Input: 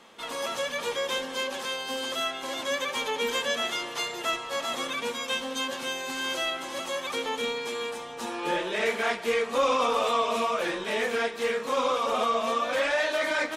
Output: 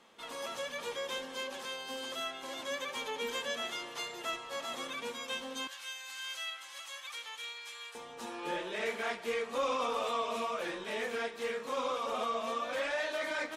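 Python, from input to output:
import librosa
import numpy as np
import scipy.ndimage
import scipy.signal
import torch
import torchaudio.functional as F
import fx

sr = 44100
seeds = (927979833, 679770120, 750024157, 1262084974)

y = fx.highpass(x, sr, hz=1500.0, slope=12, at=(5.67, 7.95))
y = y * librosa.db_to_amplitude(-8.5)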